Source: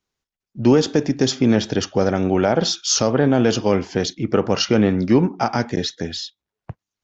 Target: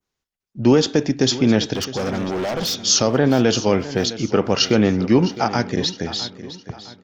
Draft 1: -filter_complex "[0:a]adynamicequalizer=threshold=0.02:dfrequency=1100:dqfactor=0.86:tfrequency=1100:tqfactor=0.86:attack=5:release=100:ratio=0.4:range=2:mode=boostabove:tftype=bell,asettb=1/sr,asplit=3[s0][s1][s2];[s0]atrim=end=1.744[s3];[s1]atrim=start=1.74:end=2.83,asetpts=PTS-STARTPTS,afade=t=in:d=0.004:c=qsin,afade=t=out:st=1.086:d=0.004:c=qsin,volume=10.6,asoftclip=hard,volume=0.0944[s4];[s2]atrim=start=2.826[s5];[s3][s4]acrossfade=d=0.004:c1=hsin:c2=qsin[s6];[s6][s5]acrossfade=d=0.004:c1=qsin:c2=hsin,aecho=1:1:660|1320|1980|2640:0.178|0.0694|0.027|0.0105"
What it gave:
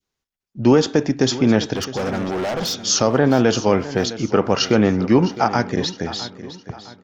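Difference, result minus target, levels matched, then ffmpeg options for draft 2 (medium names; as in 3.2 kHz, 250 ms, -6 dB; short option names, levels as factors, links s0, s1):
4 kHz band -3.0 dB
-filter_complex "[0:a]adynamicequalizer=threshold=0.02:dfrequency=3800:dqfactor=0.86:tfrequency=3800:tqfactor=0.86:attack=5:release=100:ratio=0.4:range=2:mode=boostabove:tftype=bell,asettb=1/sr,asplit=3[s0][s1][s2];[s0]atrim=end=1.744[s3];[s1]atrim=start=1.74:end=2.83,asetpts=PTS-STARTPTS,afade=t=in:d=0.004:c=qsin,afade=t=out:st=1.086:d=0.004:c=qsin,volume=10.6,asoftclip=hard,volume=0.0944[s4];[s2]atrim=start=2.826[s5];[s3][s4]acrossfade=d=0.004:c1=hsin:c2=qsin[s6];[s6][s5]acrossfade=d=0.004:c1=qsin:c2=hsin,aecho=1:1:660|1320|1980|2640:0.178|0.0694|0.027|0.0105"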